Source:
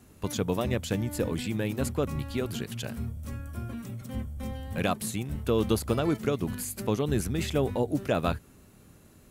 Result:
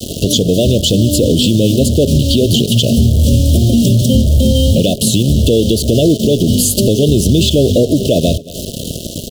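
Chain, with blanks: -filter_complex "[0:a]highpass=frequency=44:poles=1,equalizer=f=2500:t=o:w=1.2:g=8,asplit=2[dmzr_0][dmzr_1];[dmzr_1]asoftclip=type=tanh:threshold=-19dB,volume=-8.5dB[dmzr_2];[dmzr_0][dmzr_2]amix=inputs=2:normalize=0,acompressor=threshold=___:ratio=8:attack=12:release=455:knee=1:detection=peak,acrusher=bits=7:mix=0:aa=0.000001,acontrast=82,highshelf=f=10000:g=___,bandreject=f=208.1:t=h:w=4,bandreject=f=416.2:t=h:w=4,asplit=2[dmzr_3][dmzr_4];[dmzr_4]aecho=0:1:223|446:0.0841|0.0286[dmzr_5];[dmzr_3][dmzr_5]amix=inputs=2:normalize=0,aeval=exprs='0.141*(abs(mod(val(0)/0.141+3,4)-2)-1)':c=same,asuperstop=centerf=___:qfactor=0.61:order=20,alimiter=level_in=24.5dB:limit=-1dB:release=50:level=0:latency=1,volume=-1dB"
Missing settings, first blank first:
-34dB, -10.5, 1400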